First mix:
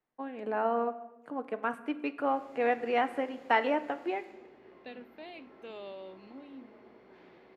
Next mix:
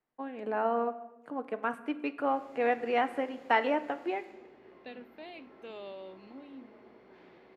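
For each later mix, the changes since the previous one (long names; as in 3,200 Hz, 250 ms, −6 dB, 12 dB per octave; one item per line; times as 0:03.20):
nothing changed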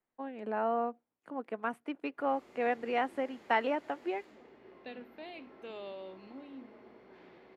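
reverb: off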